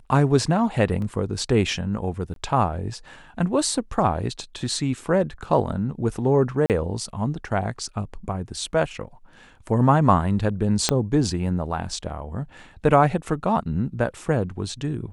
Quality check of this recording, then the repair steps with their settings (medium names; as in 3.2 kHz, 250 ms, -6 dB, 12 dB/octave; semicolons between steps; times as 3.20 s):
1.02 s: dropout 2.3 ms
2.34–2.36 s: dropout 22 ms
6.66–6.70 s: dropout 38 ms
10.89 s: pop -4 dBFS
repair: de-click; interpolate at 1.02 s, 2.3 ms; interpolate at 2.34 s, 22 ms; interpolate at 6.66 s, 38 ms